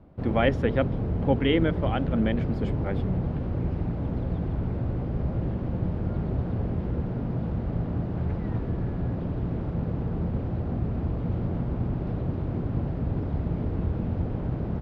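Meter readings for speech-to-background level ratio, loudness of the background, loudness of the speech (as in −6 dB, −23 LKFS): 1.5 dB, −29.5 LKFS, −28.0 LKFS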